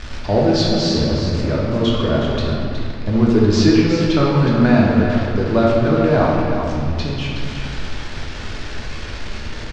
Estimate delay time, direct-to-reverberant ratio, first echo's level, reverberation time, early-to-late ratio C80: 0.367 s, -5.5 dB, -8.0 dB, 2.0 s, 0.0 dB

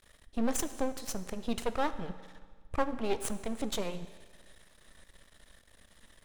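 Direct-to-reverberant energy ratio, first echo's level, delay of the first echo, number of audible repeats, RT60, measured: 11.5 dB, none, none, none, 1.6 s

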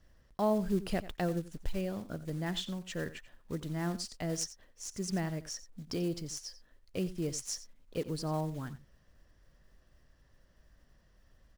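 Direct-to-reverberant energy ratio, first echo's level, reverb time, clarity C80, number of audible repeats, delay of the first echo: none, -15.5 dB, none, none, 1, 89 ms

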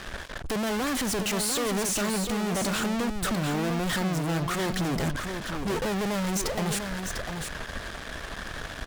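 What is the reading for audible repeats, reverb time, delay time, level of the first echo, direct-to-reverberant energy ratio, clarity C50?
1, none, 0.698 s, -6.5 dB, none, none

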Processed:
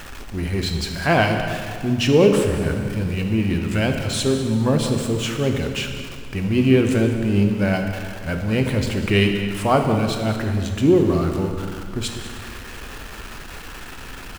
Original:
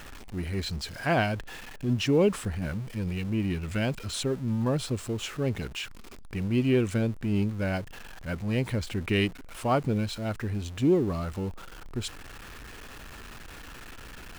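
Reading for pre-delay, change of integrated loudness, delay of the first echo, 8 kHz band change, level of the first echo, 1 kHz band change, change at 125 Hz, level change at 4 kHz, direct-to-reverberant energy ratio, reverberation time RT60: 9 ms, +8.5 dB, 0.197 s, +9.0 dB, -13.5 dB, +9.0 dB, +8.0 dB, +9.0 dB, 3.5 dB, 2.1 s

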